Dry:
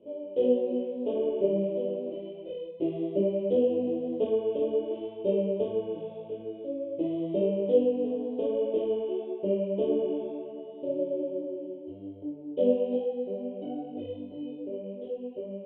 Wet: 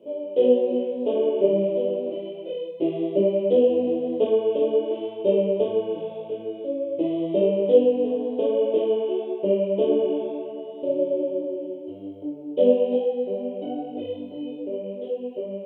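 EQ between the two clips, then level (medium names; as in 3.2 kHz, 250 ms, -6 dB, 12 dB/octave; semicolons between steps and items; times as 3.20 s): high-pass 88 Hz; bass shelf 310 Hz -8 dB; +9.0 dB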